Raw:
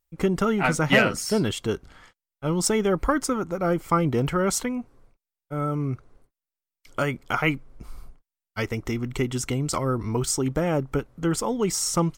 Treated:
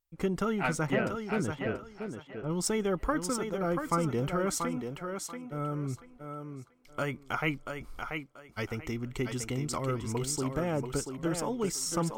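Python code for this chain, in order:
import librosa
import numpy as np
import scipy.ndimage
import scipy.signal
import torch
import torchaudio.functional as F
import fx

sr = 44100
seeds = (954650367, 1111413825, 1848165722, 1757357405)

p1 = fx.spacing_loss(x, sr, db_at_10k=40, at=(0.86, 2.49), fade=0.02)
p2 = p1 + fx.echo_thinned(p1, sr, ms=685, feedback_pct=25, hz=180.0, wet_db=-5.5, dry=0)
y = p2 * librosa.db_to_amplitude(-7.5)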